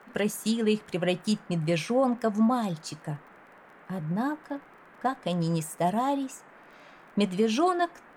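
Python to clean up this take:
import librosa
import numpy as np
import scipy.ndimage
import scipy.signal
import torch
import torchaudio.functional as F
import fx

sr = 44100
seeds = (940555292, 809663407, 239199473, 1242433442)

y = fx.fix_declick_ar(x, sr, threshold=6.5)
y = fx.noise_reduce(y, sr, print_start_s=3.38, print_end_s=3.88, reduce_db=19.0)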